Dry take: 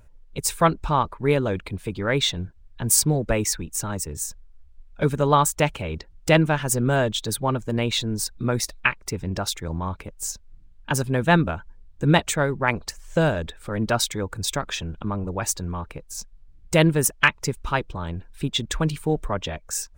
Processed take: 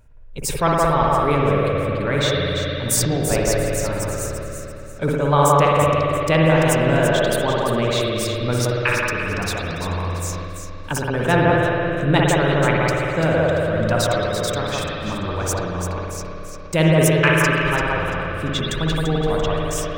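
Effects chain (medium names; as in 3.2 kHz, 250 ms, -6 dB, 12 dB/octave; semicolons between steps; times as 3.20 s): echo whose repeats swap between lows and highs 170 ms, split 2 kHz, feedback 57%, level -3 dB; spring tank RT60 3.2 s, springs 56 ms, chirp 60 ms, DRR -2.5 dB; decay stretcher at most 26 dB/s; trim -2 dB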